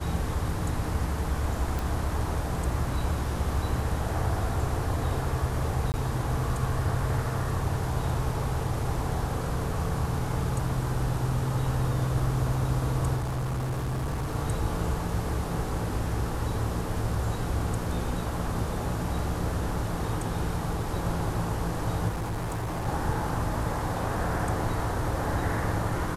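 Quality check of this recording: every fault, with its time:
0:01.79: click
0:05.92–0:05.94: drop-out 19 ms
0:13.16–0:14.36: clipping −26.5 dBFS
0:22.08–0:22.88: clipping −27.5 dBFS

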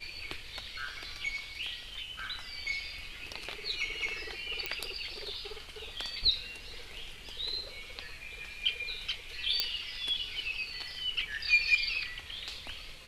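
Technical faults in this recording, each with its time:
0:04.66: click −15 dBFS
0:09.60: click −11 dBFS

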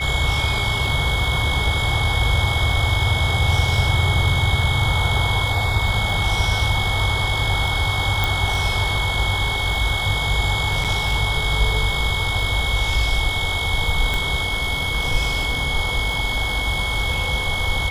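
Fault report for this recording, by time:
surface crackle 18 per second −27 dBFS
whistle 2,200 Hz −24 dBFS
0:08.24: click
0:10.84–0:10.85: drop-out 6.8 ms
0:14.14: click −9 dBFS

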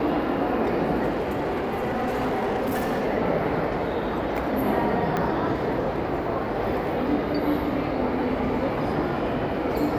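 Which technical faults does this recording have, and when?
0:01.09–0:03.07: clipping −21.5 dBFS
0:05.17: click −13 dBFS

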